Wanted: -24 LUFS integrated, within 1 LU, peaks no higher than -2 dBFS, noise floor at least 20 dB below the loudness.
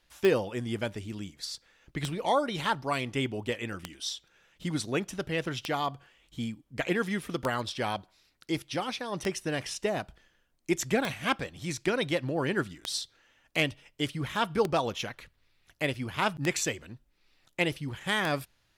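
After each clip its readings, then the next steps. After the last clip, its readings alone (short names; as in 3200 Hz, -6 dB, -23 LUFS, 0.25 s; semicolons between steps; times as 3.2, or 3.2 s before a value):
clicks 11; loudness -31.5 LUFS; peak -12.0 dBFS; loudness target -24.0 LUFS
-> de-click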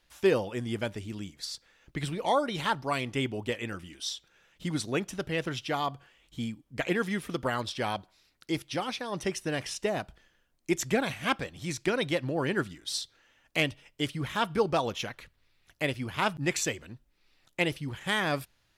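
clicks 0; loudness -31.5 LUFS; peak -14.0 dBFS; loudness target -24.0 LUFS
-> gain +7.5 dB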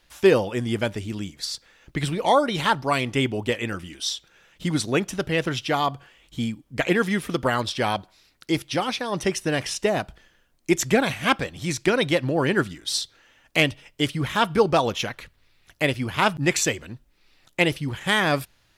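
loudness -24.0 LUFS; peak -6.5 dBFS; noise floor -63 dBFS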